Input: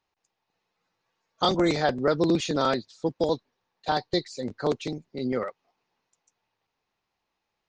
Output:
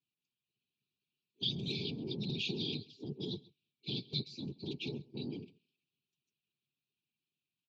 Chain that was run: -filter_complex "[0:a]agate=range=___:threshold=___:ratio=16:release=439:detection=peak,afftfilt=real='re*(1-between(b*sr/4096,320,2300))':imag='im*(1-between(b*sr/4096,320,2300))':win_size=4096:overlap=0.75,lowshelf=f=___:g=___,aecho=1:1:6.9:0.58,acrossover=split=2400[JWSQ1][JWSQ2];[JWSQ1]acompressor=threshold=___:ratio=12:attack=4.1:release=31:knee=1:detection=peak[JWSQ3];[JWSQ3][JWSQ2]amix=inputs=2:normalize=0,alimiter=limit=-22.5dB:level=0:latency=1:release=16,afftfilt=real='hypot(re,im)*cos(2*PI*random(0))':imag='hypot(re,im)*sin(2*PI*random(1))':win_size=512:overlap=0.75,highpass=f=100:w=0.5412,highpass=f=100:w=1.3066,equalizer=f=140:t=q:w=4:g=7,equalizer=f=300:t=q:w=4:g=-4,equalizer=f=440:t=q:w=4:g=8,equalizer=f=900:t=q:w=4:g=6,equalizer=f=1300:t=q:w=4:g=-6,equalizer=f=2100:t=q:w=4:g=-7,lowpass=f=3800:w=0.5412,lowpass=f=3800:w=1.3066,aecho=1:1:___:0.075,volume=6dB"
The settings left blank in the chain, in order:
-6dB, -50dB, 230, -7, -39dB, 134